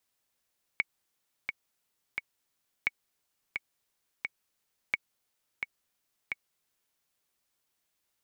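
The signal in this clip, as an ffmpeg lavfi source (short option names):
-f lavfi -i "aevalsrc='pow(10,(-13-6*gte(mod(t,3*60/87),60/87))/20)*sin(2*PI*2230*mod(t,60/87))*exp(-6.91*mod(t,60/87)/0.03)':d=6.2:s=44100"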